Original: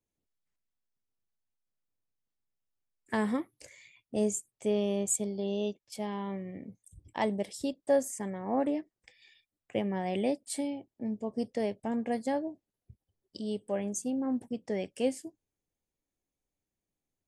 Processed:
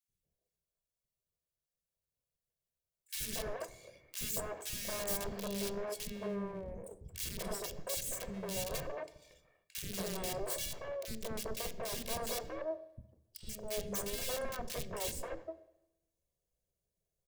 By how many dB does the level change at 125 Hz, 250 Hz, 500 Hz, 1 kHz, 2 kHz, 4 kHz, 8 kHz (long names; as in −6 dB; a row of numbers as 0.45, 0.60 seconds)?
−4.5, −13.5, −8.0, −7.0, −2.0, +4.0, −2.0 decibels